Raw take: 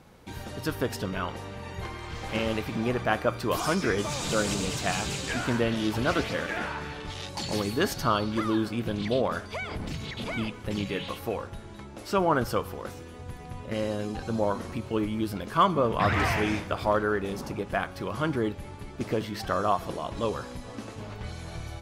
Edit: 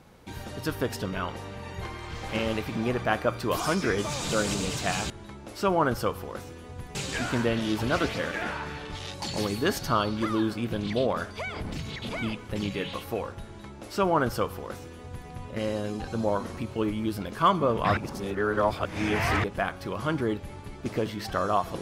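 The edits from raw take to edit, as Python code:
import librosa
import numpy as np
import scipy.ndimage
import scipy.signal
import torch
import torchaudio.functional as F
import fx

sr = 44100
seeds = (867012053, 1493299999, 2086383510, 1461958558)

y = fx.edit(x, sr, fx.duplicate(start_s=11.6, length_s=1.85, to_s=5.1),
    fx.reverse_span(start_s=16.12, length_s=1.47), tone=tone)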